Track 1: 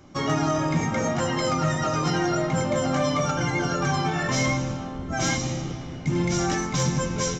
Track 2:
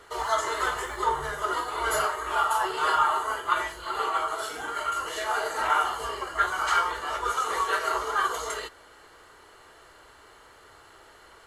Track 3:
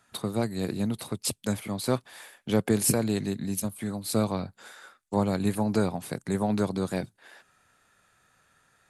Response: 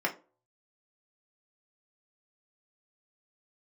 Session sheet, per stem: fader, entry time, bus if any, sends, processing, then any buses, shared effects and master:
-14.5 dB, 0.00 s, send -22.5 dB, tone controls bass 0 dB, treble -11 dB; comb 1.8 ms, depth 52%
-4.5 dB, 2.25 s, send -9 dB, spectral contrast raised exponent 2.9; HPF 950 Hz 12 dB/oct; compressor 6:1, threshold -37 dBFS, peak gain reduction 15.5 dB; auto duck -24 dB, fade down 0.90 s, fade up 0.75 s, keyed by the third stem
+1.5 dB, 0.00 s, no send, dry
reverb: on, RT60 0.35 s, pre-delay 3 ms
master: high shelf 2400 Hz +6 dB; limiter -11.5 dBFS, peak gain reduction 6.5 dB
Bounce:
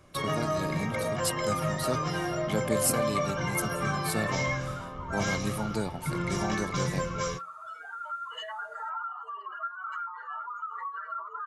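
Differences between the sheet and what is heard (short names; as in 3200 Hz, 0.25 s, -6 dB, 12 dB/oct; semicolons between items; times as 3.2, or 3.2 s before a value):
stem 1 -14.5 dB -> -8.0 dB; stem 2: entry 2.25 s -> 3.25 s; stem 3 +1.5 dB -> -7.0 dB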